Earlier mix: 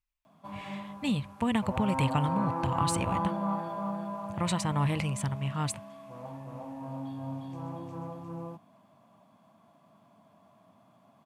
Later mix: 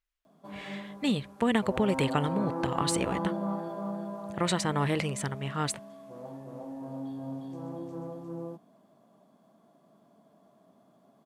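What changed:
speech: add bell 1900 Hz +10 dB 2.7 oct; master: add fifteen-band EQ 100 Hz -12 dB, 400 Hz +9 dB, 1000 Hz -7 dB, 2500 Hz -9 dB

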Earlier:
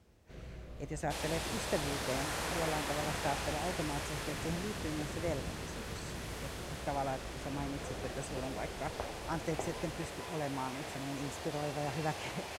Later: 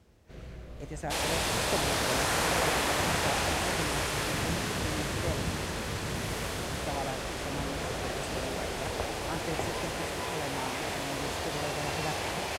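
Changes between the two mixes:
first sound +3.5 dB; second sound +9.5 dB

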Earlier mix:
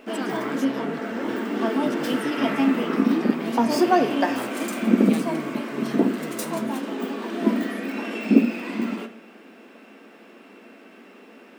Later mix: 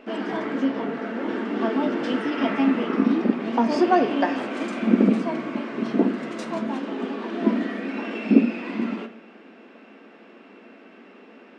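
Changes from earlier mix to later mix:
speech -6.0 dB; master: add Gaussian blur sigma 1.6 samples

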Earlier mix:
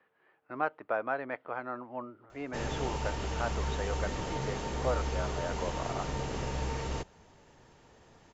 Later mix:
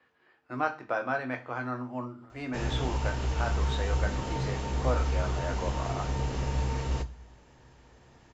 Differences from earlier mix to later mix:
speech: remove air absorption 290 m; reverb: on, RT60 0.40 s

